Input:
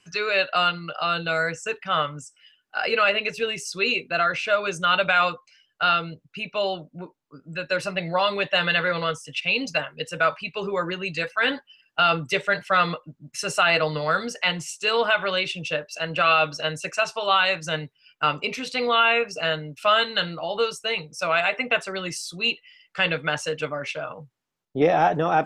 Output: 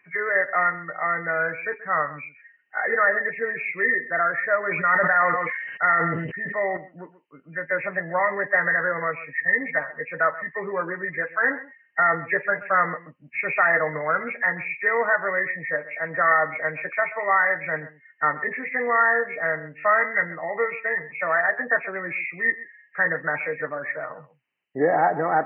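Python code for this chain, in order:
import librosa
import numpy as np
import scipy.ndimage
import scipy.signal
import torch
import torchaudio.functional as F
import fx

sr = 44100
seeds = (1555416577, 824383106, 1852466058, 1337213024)

y = fx.freq_compress(x, sr, knee_hz=1600.0, ratio=4.0)
y = fx.highpass(y, sr, hz=290.0, slope=6)
y = y + 10.0 ** (-16.5 / 20.0) * np.pad(y, (int(130 * sr / 1000.0), 0))[:len(y)]
y = fx.sustainer(y, sr, db_per_s=35.0, at=(4.63, 6.77))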